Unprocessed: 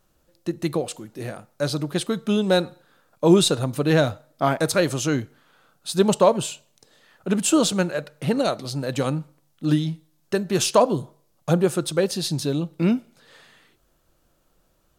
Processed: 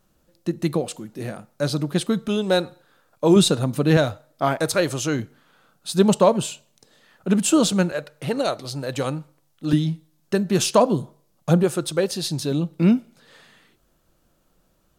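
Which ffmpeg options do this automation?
-af "asetnsamples=n=441:p=0,asendcmd='2.28 equalizer g -3;3.36 equalizer g 6.5;3.97 equalizer g -3.5;5.19 equalizer g 4;7.92 equalizer g -6.5;9.73 equalizer g 5;11.63 equalizer g -2;12.51 equalizer g 4.5',equalizer=f=200:t=o:w=0.84:g=5.5"

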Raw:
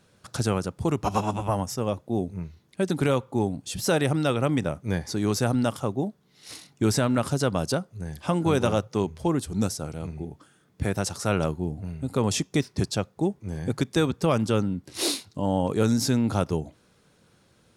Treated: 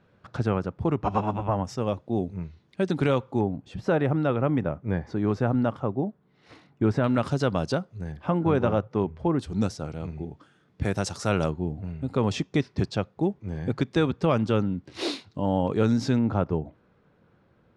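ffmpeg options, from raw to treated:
-af "asetnsamples=n=441:p=0,asendcmd='1.65 lowpass f 4200;3.41 lowpass f 1700;7.04 lowpass f 4100;8.12 lowpass f 1900;9.39 lowpass f 4100;10.85 lowpass f 6700;11.5 lowpass f 3400;16.19 lowpass f 1700',lowpass=2.2k"

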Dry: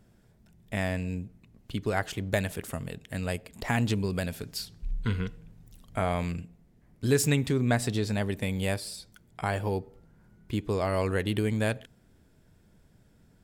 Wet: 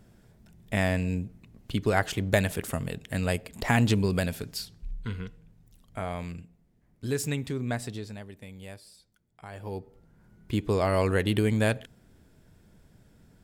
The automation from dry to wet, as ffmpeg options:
-af "volume=21.5dB,afade=t=out:st=4.15:d=0.82:silence=0.334965,afade=t=out:st=7.76:d=0.49:silence=0.354813,afade=t=in:st=9.5:d=0.28:silence=0.334965,afade=t=in:st=9.78:d=0.87:silence=0.398107"

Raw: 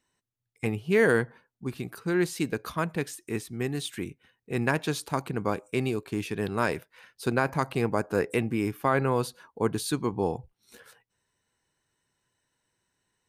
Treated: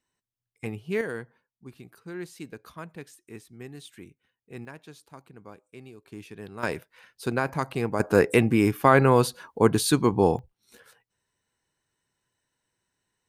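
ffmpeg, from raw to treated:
-af "asetnsamples=n=441:p=0,asendcmd='1.01 volume volume -11.5dB;4.65 volume volume -18dB;6.05 volume volume -11dB;6.63 volume volume -1dB;8 volume volume 7dB;10.39 volume volume -2dB',volume=-5dB"

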